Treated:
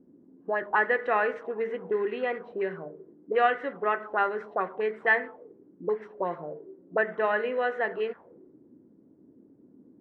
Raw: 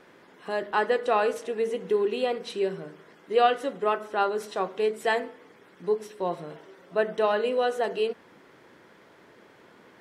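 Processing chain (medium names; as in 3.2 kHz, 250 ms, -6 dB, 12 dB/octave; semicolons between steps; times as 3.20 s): touch-sensitive low-pass 250–1900 Hz up, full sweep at -24 dBFS; trim -4 dB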